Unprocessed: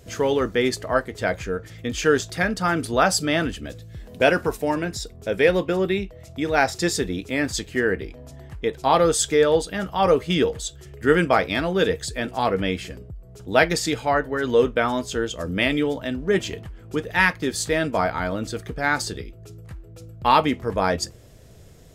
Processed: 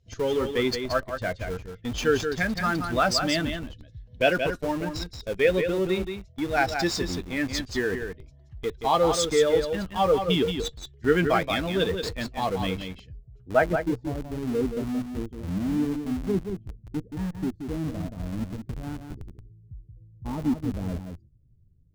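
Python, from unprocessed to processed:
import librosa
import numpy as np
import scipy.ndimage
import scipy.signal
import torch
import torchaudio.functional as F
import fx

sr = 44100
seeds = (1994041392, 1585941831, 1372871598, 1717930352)

p1 = fx.bin_expand(x, sr, power=1.5)
p2 = fx.filter_sweep_lowpass(p1, sr, from_hz=4900.0, to_hz=260.0, start_s=13.13, end_s=14.1, q=1.4)
p3 = fx.schmitt(p2, sr, flips_db=-32.5)
p4 = p2 + F.gain(torch.from_numpy(p3), -8.5).numpy()
p5 = p4 + 10.0 ** (-7.0 / 20.0) * np.pad(p4, (int(177 * sr / 1000.0), 0))[:len(p4)]
y = F.gain(torch.from_numpy(p5), -2.5).numpy()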